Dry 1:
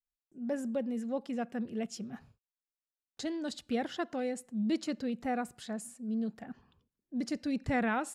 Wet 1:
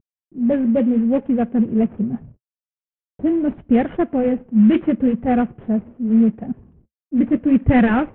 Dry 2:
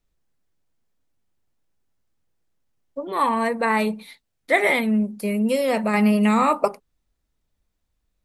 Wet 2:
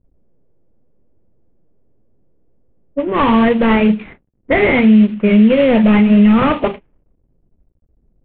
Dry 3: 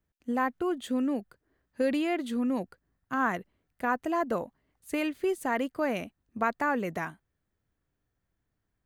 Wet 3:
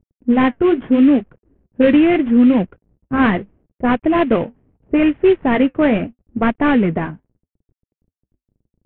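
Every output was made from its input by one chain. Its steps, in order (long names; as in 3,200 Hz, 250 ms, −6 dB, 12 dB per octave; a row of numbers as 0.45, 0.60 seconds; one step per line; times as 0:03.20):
variable-slope delta modulation 16 kbit/s
low-pass that shuts in the quiet parts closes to 480 Hz, open at −19 dBFS
parametric band 1,000 Hz −10.5 dB 2.3 octaves
brickwall limiter −21.5 dBFS
flanger 0.77 Hz, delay 0.9 ms, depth 9.7 ms, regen −60%
normalise the peak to −2 dBFS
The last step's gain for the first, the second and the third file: +25.5, +22.0, +24.5 decibels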